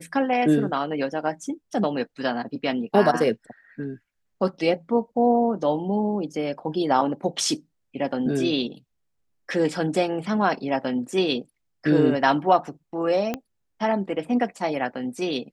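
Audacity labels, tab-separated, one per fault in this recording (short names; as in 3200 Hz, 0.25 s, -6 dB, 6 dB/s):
13.340000	13.340000	pop -13 dBFS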